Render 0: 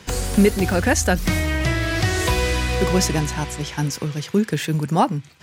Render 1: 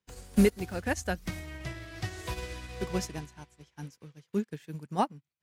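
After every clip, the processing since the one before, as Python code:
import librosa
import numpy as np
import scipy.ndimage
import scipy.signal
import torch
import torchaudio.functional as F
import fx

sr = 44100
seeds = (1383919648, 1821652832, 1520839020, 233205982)

y = fx.upward_expand(x, sr, threshold_db=-36.0, expansion=2.5)
y = F.gain(torch.from_numpy(y), -6.0).numpy()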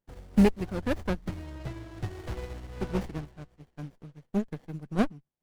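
y = scipy.signal.medfilt(x, 3)
y = fx.high_shelf(y, sr, hz=7800.0, db=-4.0)
y = fx.running_max(y, sr, window=33)
y = F.gain(torch.from_numpy(y), 2.0).numpy()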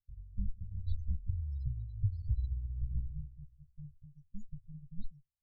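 y = fx.rider(x, sr, range_db=4, speed_s=0.5)
y = scipy.signal.sosfilt(scipy.signal.cheby2(4, 60, [310.0, 1400.0], 'bandstop', fs=sr, output='sos'), y)
y = fx.spec_topn(y, sr, count=8)
y = F.gain(torch.from_numpy(y), 1.5).numpy()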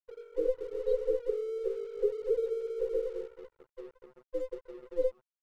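y = fx.band_invert(x, sr, width_hz=500)
y = np.sign(y) * np.maximum(np.abs(y) - 10.0 ** (-57.0 / 20.0), 0.0)
y = F.gain(torch.from_numpy(y), 2.5).numpy()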